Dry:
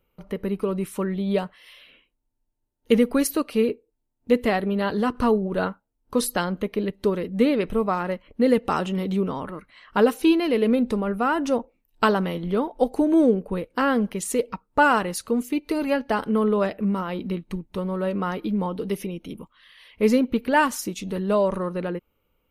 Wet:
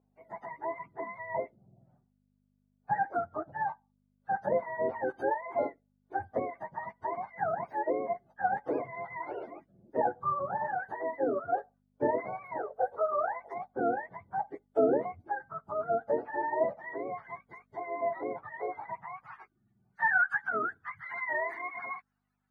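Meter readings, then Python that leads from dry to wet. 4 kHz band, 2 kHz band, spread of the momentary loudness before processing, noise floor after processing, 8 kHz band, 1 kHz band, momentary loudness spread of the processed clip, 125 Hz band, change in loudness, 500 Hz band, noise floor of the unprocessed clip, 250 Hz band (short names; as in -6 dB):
under -35 dB, -4.5 dB, 10 LU, -74 dBFS, under -40 dB, -5.0 dB, 12 LU, -19.5 dB, -9.5 dB, -9.0 dB, -75 dBFS, -19.5 dB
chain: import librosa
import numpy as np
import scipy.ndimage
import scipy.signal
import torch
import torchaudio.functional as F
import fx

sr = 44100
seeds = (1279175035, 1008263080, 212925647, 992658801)

y = fx.octave_mirror(x, sr, pivot_hz=620.0)
y = fx.add_hum(y, sr, base_hz=50, snr_db=25)
y = fx.filter_sweep_bandpass(y, sr, from_hz=580.0, to_hz=1500.0, start_s=18.74, end_s=19.76, q=2.3)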